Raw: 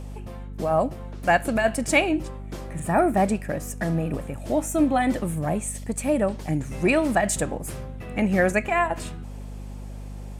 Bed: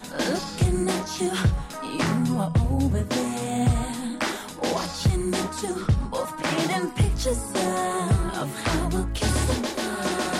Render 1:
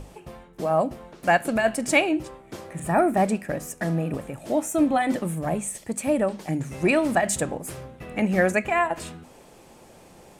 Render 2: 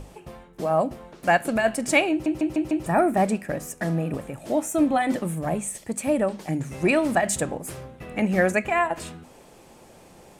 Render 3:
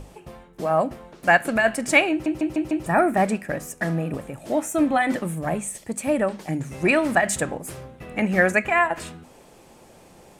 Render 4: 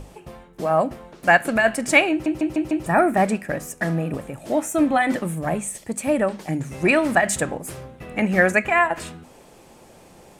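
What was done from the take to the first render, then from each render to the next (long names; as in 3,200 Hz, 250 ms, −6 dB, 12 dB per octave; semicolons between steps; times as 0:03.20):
mains-hum notches 50/100/150/200/250 Hz
0:02.11: stutter in place 0.15 s, 5 plays
dynamic equaliser 1,700 Hz, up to +6 dB, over −39 dBFS, Q 1.1
level +1.5 dB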